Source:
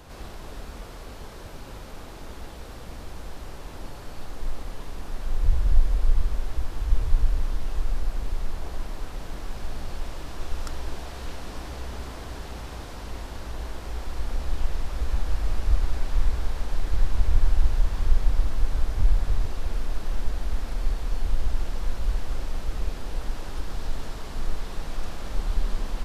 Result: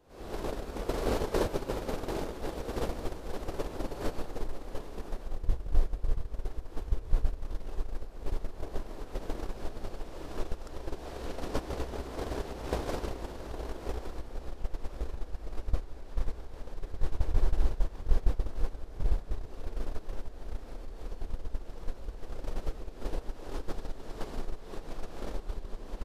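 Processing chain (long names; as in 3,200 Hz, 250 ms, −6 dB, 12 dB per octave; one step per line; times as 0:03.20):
camcorder AGC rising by 68 dB per second
parametric band 420 Hz +10.5 dB 1.7 octaves
single-tap delay 669 ms −16.5 dB
noise gate −14 dBFS, range −17 dB
level −6 dB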